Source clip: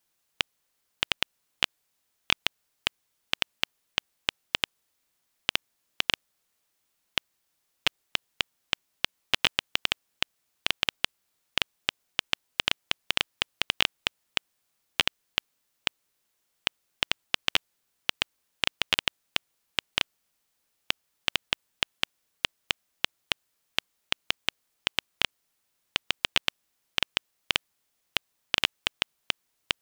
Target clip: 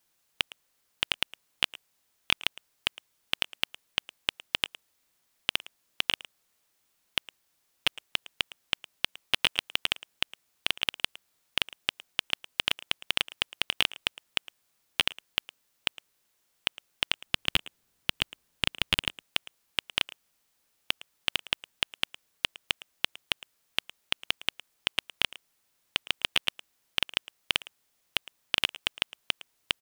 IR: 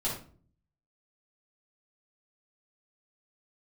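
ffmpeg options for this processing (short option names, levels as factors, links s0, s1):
-filter_complex "[0:a]asettb=1/sr,asplit=3[s0][s1][s2];[s0]atrim=end=17.264[s3];[s1]atrim=start=17.26:end=19.22,asetpts=PTS-STARTPTS,afade=t=in:d=0.004:c=qsin,afade=t=out:st=1.956:d=0.004:c=qsin,lowshelf=f=310:g=9.5[s4];[s2]atrim=start=19.216[s5];[s3][s4]acrossfade=d=0.004:c1=hsin:c2=qsin[s6];[s6][s5]acrossfade=d=0.004:c1=qsin:c2=hsin,acontrast=85,asplit=2[s7][s8];[s8]adelay=110,highpass=300,lowpass=3400,asoftclip=type=hard:threshold=0.316,volume=0.2[s9];[s7][s9]amix=inputs=2:normalize=0,volume=0.596"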